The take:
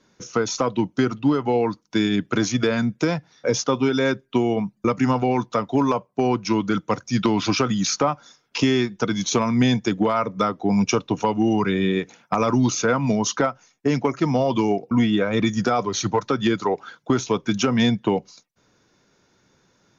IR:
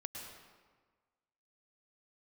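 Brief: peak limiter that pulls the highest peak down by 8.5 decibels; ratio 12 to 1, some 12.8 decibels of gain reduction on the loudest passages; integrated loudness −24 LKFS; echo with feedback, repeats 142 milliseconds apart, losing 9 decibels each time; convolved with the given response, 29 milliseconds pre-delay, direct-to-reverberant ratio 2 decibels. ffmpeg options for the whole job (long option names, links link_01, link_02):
-filter_complex "[0:a]acompressor=threshold=-28dB:ratio=12,alimiter=limit=-24dB:level=0:latency=1,aecho=1:1:142|284|426|568:0.355|0.124|0.0435|0.0152,asplit=2[link_01][link_02];[1:a]atrim=start_sample=2205,adelay=29[link_03];[link_02][link_03]afir=irnorm=-1:irlink=0,volume=0dB[link_04];[link_01][link_04]amix=inputs=2:normalize=0,volume=8dB"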